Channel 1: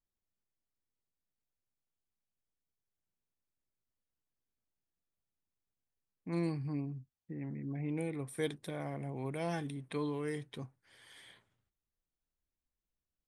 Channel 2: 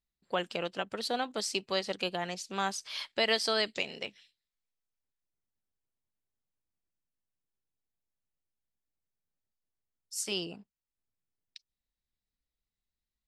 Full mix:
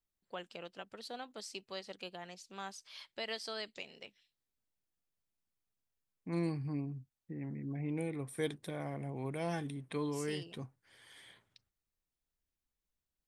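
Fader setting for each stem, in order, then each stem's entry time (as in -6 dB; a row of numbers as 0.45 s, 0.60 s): -0.5 dB, -12.5 dB; 0.00 s, 0.00 s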